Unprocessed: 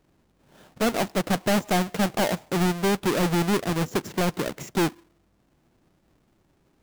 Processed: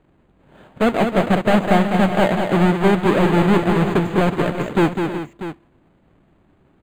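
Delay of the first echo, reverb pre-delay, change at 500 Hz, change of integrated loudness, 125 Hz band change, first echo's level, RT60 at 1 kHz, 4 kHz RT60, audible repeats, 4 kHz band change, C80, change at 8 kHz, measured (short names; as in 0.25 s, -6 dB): 0.202 s, none, +8.5 dB, +7.5 dB, +8.5 dB, -6.0 dB, none, none, 4, +1.5 dB, none, n/a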